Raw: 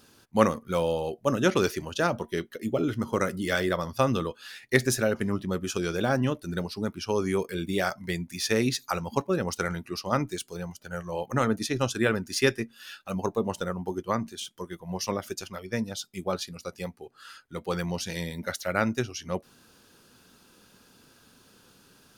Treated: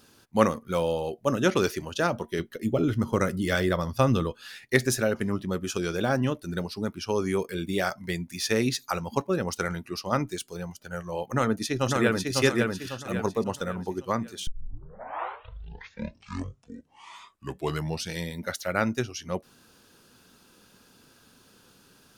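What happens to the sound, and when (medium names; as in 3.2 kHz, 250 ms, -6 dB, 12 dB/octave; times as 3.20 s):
2.39–4.65 s: bass shelf 160 Hz +9 dB
11.24–12.33 s: echo throw 550 ms, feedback 40%, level -2.5 dB
14.47 s: tape start 3.76 s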